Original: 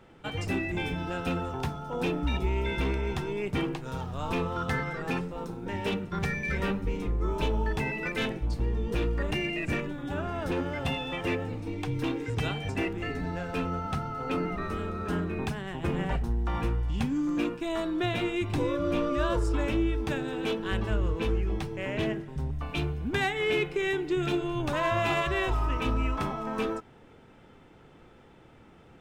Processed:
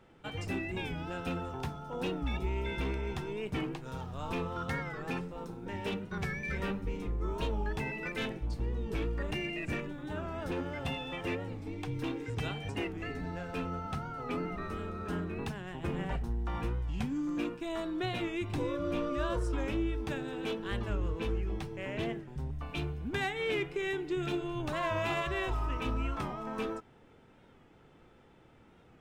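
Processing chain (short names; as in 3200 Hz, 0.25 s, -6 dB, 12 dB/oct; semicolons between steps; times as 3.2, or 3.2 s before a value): record warp 45 rpm, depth 100 cents; gain -5.5 dB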